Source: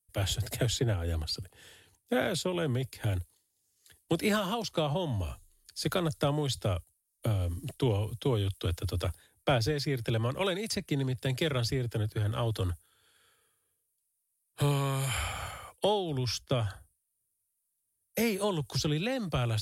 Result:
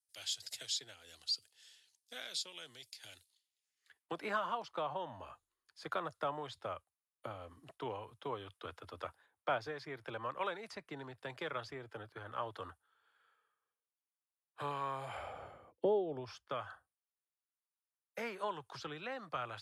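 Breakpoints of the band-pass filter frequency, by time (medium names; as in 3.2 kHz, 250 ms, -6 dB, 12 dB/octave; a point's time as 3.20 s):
band-pass filter, Q 1.8
3.13 s 5 kHz
4.16 s 1.1 kHz
14.82 s 1.1 kHz
15.74 s 270 Hz
16.50 s 1.2 kHz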